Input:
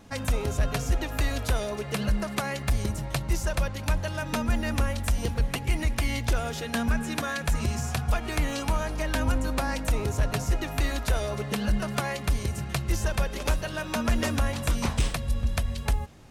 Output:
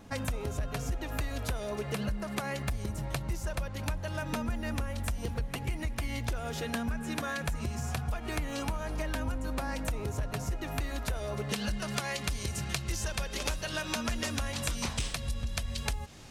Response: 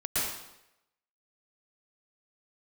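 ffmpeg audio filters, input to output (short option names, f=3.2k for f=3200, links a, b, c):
-af "asetnsamples=n=441:p=0,asendcmd='11.49 equalizer g 8.5',equalizer=f=5.3k:w=0.41:g=-2.5,acompressor=threshold=-30dB:ratio=6"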